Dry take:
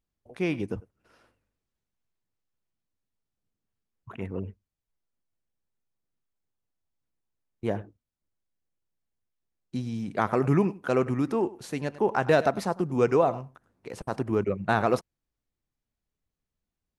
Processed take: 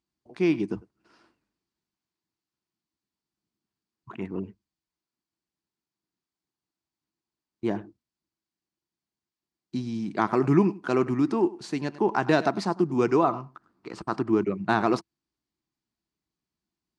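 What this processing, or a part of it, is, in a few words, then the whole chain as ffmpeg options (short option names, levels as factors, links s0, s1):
car door speaker: -filter_complex "[0:a]highpass=82,equalizer=f=96:t=q:w=4:g=-8,equalizer=f=200:t=q:w=4:g=3,equalizer=f=330:t=q:w=4:g=9,equalizer=f=520:t=q:w=4:g=-9,equalizer=f=1000:t=q:w=4:g=4,equalizer=f=4600:t=q:w=4:g=7,lowpass=f=8500:w=0.5412,lowpass=f=8500:w=1.3066,asettb=1/sr,asplit=3[s0][s1][s2];[s0]atrim=end=13.244[s3];[s1]atrim=start=13.24:end=14.3,asetpts=PTS-STARTPTS,afade=t=in:d=0.004:c=qsin,afade=t=out:st=1.056:d=0.004:c=qsin,equalizer=f=1250:t=o:w=0.33:g=10,equalizer=f=6300:t=o:w=0.33:g=-3,equalizer=f=10000:t=o:w=0.33:g=-8[s4];[s2]atrim=start=14.296[s5];[s3][s4]acrossfade=d=0.004:c1=hsin:c2=qsin[s6];[s6][s5]acrossfade=d=0.004:c1=qsin:c2=hsin"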